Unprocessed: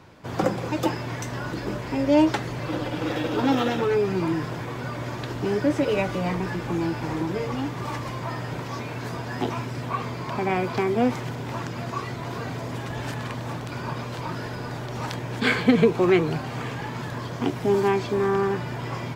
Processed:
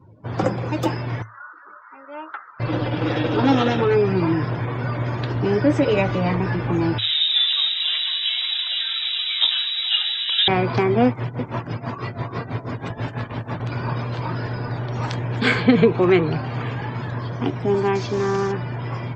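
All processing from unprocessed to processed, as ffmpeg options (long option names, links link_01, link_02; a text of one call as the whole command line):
ffmpeg -i in.wav -filter_complex "[0:a]asettb=1/sr,asplit=3[link_01][link_02][link_03];[link_01]atrim=end=1.224[link_04];[link_02]atrim=start=1.22:end=2.6,asetpts=PTS-STARTPTS,afade=type=in:duration=0.004:curve=qsin,afade=type=out:start_time=1.376:duration=0.004:curve=qsin,bandpass=frequency=1300:width_type=q:width=5.9,aemphasis=mode=production:type=75kf[link_05];[link_03]atrim=start=2.596[link_06];[link_04][link_05]acrossfade=duration=0.004:curve1=hsin:curve2=qsin[link_07];[link_07][link_06]acrossfade=duration=0.004:curve1=qsin:curve2=hsin,asettb=1/sr,asplit=3[link_08][link_09][link_10];[link_08]atrim=end=6.984[link_11];[link_09]atrim=start=6.98:end=10.48,asetpts=PTS-STARTPTS,afade=type=in:duration=0.004:curve=qsin,afade=type=out:start_time=3.496:duration=0.004:curve=qsin,equalizer=frequency=560:width=1.3:gain=7.5,aecho=1:1:493:0.299,atrim=end_sample=154350,lowpass=frequency=3400:width_type=q:width=0.5098,lowpass=frequency=3400:width_type=q:width=0.6013,lowpass=frequency=3400:width_type=q:width=0.9,lowpass=frequency=3400:width_type=q:width=2.563,afreqshift=-4000[link_12];[link_10]atrim=start=10.476[link_13];[link_11][link_12]acrossfade=duration=0.004:curve1=hsin:curve2=qsin[link_14];[link_14][link_13]acrossfade=duration=0.004:curve1=qsin:curve2=hsin,asettb=1/sr,asplit=3[link_15][link_16][link_17];[link_15]atrim=end=11.074[link_18];[link_16]atrim=start=11.07:end=13.6,asetpts=PTS-STARTPTS,afade=type=in:duration=0.004:curve=qsin,afade=type=out:start_time=2.526:duration=0.004:curve=qsin,tremolo=f=6.1:d=0.78,aecho=1:1:320:0.531,atrim=end_sample=111573[link_19];[link_17]atrim=start=13.596[link_20];[link_18][link_19]acrossfade=duration=0.004:curve1=hsin:curve2=qsin[link_21];[link_21][link_20]acrossfade=duration=0.004:curve1=qsin:curve2=hsin,asettb=1/sr,asplit=3[link_22][link_23][link_24];[link_22]atrim=end=17.954[link_25];[link_23]atrim=start=17.95:end=18.52,asetpts=PTS-STARTPTS,afade=type=in:duration=0.004:curve=qsin,afade=type=out:start_time=0.566:duration=0.004:curve=qsin,acrusher=bits=5:mode=log:mix=0:aa=0.000001,lowpass=frequency=6100:width_type=q:width=2.2[link_26];[link_24]atrim=start=18.516[link_27];[link_25][link_26]acrossfade=duration=0.004:curve1=hsin:curve2=qsin[link_28];[link_28][link_27]acrossfade=duration=0.004:curve1=qsin:curve2=hsin,afftdn=noise_reduction=27:noise_floor=-46,equalizer=frequency=110:width_type=o:width=0.23:gain=11.5,dynaudnorm=framelen=140:gausssize=31:maxgain=3dB,volume=1.5dB" out.wav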